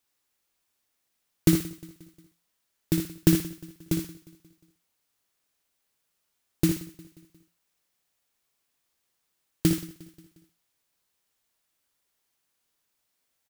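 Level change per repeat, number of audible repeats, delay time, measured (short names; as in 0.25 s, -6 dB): no steady repeat, 7, 59 ms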